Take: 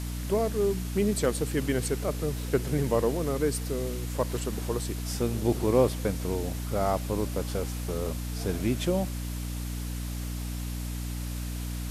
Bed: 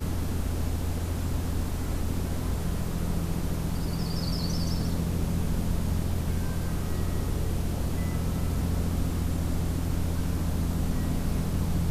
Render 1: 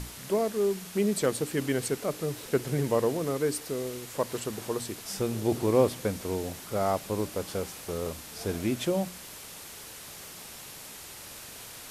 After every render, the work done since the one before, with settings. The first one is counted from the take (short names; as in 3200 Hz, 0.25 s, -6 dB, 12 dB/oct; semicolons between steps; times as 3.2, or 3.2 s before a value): notches 60/120/180/240/300 Hz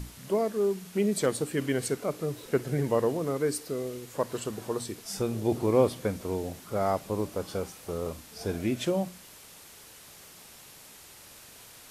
noise print and reduce 6 dB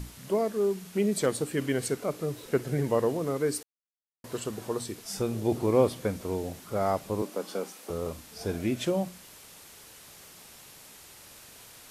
3.63–4.24 mute; 7.22–7.9 steep high-pass 190 Hz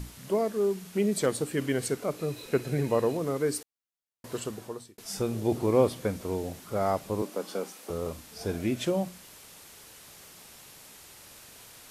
2.17–3.17 small resonant body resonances 2500/4000 Hz, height 15 dB; 4.42–4.98 fade out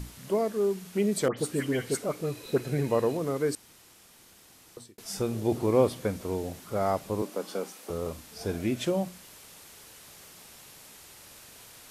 1.28–2.58 dispersion highs, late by 96 ms, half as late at 2300 Hz; 3.55–4.77 room tone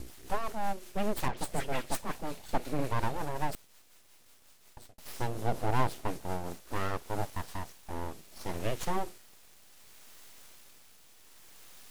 rotary speaker horn 5.5 Hz, later 0.65 Hz, at 6.32; full-wave rectifier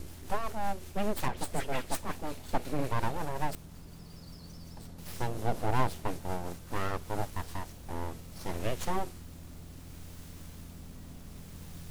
add bed -19.5 dB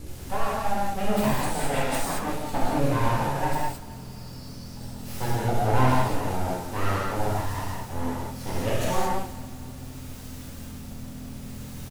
feedback echo 0.269 s, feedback 53%, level -20 dB; non-linear reverb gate 0.25 s flat, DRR -7.5 dB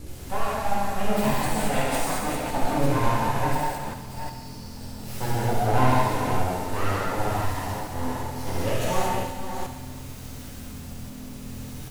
reverse delay 0.358 s, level -7 dB; thinning echo 69 ms, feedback 73%, high-pass 380 Hz, level -9 dB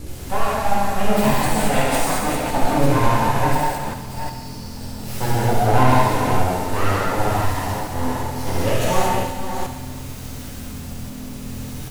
gain +6 dB; limiter -3 dBFS, peak gain reduction 2 dB